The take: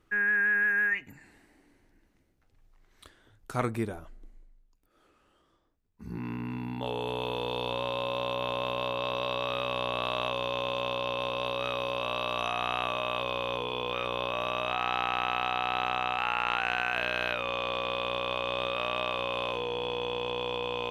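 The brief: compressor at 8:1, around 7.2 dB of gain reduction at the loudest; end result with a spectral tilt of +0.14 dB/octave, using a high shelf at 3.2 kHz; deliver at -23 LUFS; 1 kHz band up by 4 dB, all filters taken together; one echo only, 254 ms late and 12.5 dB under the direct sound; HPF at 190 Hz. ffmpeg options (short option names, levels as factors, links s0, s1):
-af "highpass=190,equalizer=f=1000:t=o:g=4,highshelf=f=3200:g=8,acompressor=threshold=0.0398:ratio=8,aecho=1:1:254:0.237,volume=2.99"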